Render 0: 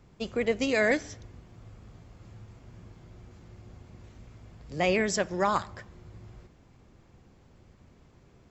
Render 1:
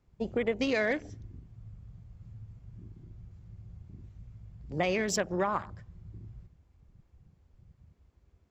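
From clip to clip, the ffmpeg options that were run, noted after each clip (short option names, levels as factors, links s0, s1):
-af "afwtdn=0.01,acompressor=threshold=0.0447:ratio=6,volume=1.26"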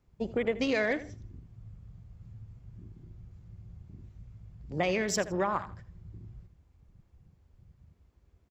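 -af "aecho=1:1:81|162:0.158|0.0396"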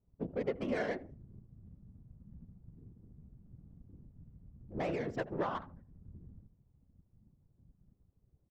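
-af "adynamicsmooth=sensitivity=1.5:basefreq=800,afftfilt=real='hypot(re,im)*cos(2*PI*random(0))':imag='hypot(re,im)*sin(2*PI*random(1))':win_size=512:overlap=0.75"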